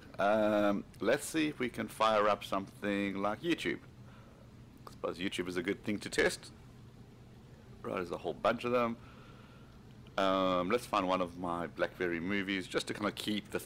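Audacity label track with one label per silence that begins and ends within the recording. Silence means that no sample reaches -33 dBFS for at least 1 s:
3.750000	4.870000	silence
6.350000	7.870000	silence
8.920000	10.180000	silence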